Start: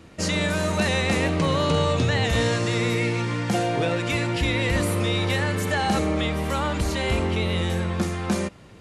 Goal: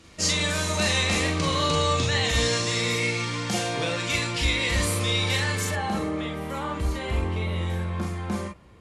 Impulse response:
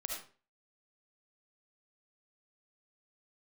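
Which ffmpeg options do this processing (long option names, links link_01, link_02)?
-filter_complex "[0:a]asetnsamples=nb_out_samples=441:pad=0,asendcmd='5.71 equalizer g -5.5',equalizer=frequency=5900:width_type=o:width=2.4:gain=10.5[link_01];[1:a]atrim=start_sample=2205,atrim=end_sample=3969,asetrate=74970,aresample=44100[link_02];[link_01][link_02]afir=irnorm=-1:irlink=0,volume=1.5dB"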